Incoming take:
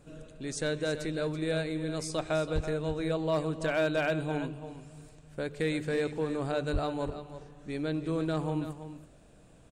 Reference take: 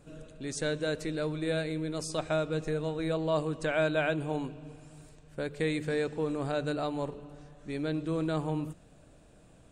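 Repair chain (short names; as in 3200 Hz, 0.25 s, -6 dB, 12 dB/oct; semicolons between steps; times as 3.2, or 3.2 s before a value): clip repair -22 dBFS; de-plosive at 2.54/6.72; inverse comb 0.331 s -11.5 dB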